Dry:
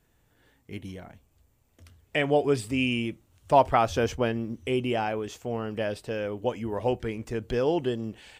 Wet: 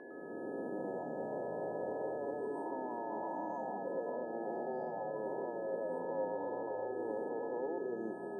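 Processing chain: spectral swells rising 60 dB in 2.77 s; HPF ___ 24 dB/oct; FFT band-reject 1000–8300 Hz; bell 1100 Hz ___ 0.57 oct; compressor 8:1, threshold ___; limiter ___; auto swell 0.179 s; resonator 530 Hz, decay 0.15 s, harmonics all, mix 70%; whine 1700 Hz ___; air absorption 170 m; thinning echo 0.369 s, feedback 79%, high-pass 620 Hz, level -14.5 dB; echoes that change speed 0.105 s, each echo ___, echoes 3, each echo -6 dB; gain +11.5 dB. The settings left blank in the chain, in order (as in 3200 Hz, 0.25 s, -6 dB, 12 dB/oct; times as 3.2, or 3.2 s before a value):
310 Hz, +11.5 dB, -33 dBFS, -35.5 dBFS, -66 dBFS, -5 st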